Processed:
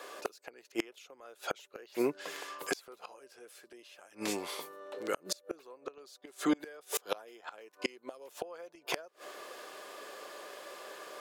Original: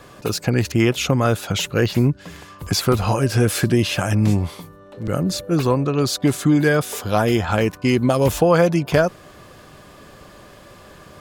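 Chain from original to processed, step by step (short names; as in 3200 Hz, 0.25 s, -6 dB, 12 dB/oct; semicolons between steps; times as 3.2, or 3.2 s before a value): Chebyshev high-pass 410 Hz, order 3; 4.07–5.31 dynamic EQ 600 Hz, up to -7 dB, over -39 dBFS, Q 0.92; flipped gate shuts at -17 dBFS, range -30 dB; gain -1 dB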